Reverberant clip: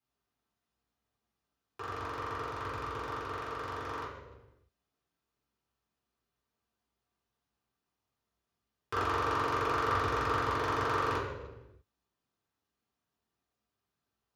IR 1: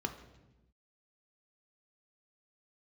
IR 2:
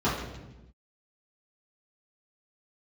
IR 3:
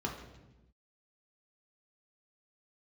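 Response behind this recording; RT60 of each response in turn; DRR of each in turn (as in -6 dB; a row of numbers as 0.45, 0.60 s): 2; 1.0, 1.0, 1.0 s; 5.0, -11.0, -1.0 dB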